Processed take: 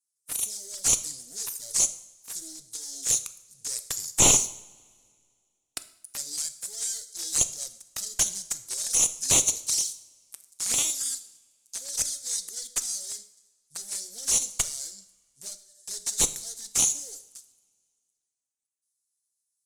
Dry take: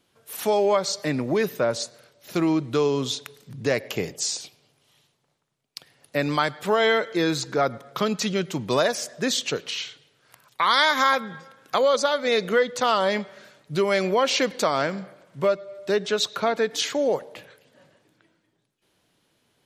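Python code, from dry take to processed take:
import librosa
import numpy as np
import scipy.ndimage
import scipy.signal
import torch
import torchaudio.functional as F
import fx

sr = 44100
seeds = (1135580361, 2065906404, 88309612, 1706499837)

y = fx.cheby_harmonics(x, sr, harmonics=(4, 6), levels_db=(-14, -10), full_scale_db=-6.0)
y = fx.rider(y, sr, range_db=5, speed_s=0.5)
y = fx.leveller(y, sr, passes=3)
y = scipy.signal.sosfilt(scipy.signal.cheby2(4, 60, 2800.0, 'highpass', fs=sr, output='sos'), y)
y = fx.fold_sine(y, sr, drive_db=10, ceiling_db=-9.0)
y = fx.env_flanger(y, sr, rest_ms=8.4, full_db=-15.5)
y = fx.air_absorb(y, sr, metres=94.0)
y = fx.rev_double_slope(y, sr, seeds[0], early_s=0.61, late_s=2.1, knee_db=-20, drr_db=11.0)
y = F.gain(torch.from_numpy(y), 8.0).numpy()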